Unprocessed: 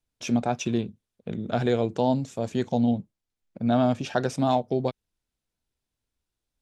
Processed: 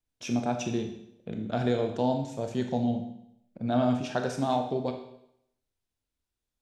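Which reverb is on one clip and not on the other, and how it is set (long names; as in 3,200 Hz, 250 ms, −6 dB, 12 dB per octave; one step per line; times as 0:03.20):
four-comb reverb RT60 0.74 s, combs from 25 ms, DRR 4.5 dB
level −4.5 dB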